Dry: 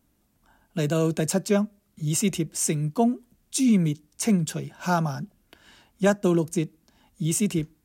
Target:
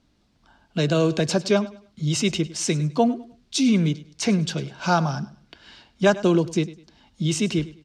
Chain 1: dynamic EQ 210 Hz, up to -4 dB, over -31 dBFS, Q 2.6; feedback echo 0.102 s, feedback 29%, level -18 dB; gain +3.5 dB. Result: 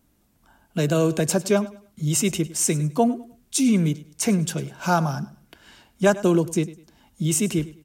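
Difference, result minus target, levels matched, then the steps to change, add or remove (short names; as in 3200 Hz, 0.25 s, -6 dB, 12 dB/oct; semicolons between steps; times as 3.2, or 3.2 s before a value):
4000 Hz band -4.5 dB
add after dynamic EQ: synth low-pass 4500 Hz, resonance Q 2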